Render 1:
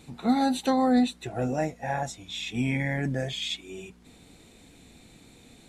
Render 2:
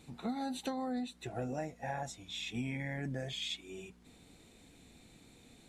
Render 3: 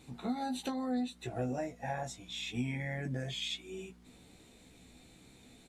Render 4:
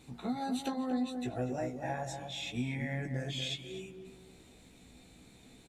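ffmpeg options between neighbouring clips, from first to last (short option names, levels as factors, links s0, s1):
-af "acompressor=threshold=0.0447:ratio=12,volume=0.473"
-filter_complex "[0:a]asplit=2[s0][s1];[s1]adelay=16,volume=0.562[s2];[s0][s2]amix=inputs=2:normalize=0"
-filter_complex "[0:a]asplit=2[s0][s1];[s1]adelay=240,lowpass=f=1200:p=1,volume=0.531,asplit=2[s2][s3];[s3]adelay=240,lowpass=f=1200:p=1,volume=0.34,asplit=2[s4][s5];[s5]adelay=240,lowpass=f=1200:p=1,volume=0.34,asplit=2[s6][s7];[s7]adelay=240,lowpass=f=1200:p=1,volume=0.34[s8];[s0][s2][s4][s6][s8]amix=inputs=5:normalize=0"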